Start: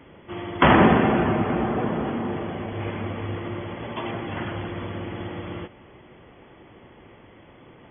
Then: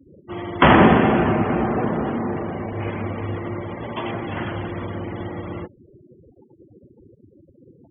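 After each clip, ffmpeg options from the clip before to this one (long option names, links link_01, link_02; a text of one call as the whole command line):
ffmpeg -i in.wav -af "afftfilt=real='re*gte(hypot(re,im),0.0158)':imag='im*gte(hypot(re,im),0.0158)':win_size=1024:overlap=0.75,volume=3dB" out.wav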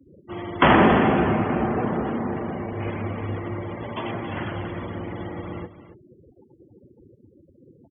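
ffmpeg -i in.wav -filter_complex "[0:a]aecho=1:1:276:0.224,acrossover=split=240[link_01][link_02];[link_01]asoftclip=type=hard:threshold=-18dB[link_03];[link_03][link_02]amix=inputs=2:normalize=0,volume=-2.5dB" out.wav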